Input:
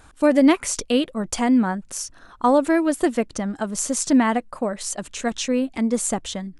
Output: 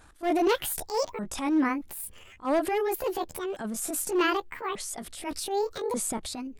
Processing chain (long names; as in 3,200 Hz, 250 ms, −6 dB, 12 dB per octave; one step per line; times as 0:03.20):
pitch shifter swept by a sawtooth +12 semitones, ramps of 1,188 ms
hard clipping −13 dBFS, distortion −16 dB
transient designer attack −10 dB, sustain +4 dB
level −4.5 dB